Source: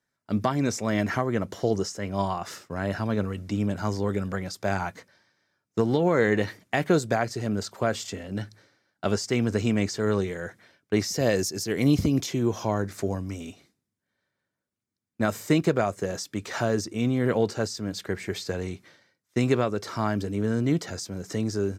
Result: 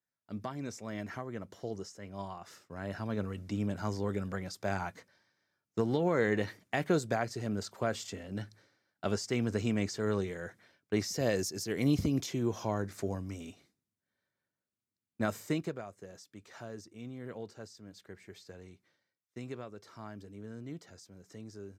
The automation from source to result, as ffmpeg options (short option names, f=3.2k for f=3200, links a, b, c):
-af "volume=-7dB,afade=t=in:st=2.5:d=0.89:silence=0.421697,afade=t=out:st=15.28:d=0.54:silence=0.237137"